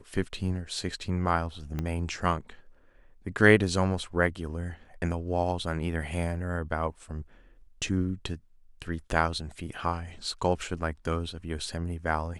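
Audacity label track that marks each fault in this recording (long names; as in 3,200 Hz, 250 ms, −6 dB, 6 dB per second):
1.790000	1.790000	click −19 dBFS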